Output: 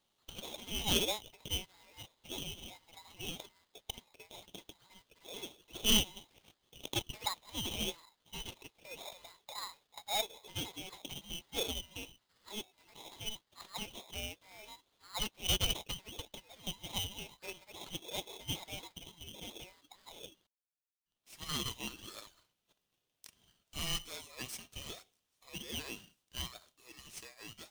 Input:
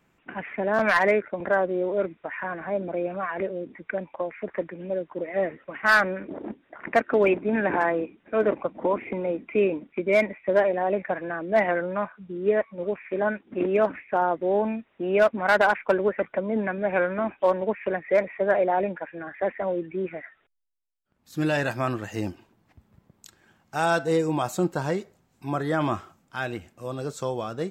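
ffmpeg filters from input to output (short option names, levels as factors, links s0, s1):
-af "highpass=f=1400:w=0.5412,highpass=f=1400:w=1.3066,aeval=exprs='val(0)*sgn(sin(2*PI*1500*n/s))':c=same,volume=0.501"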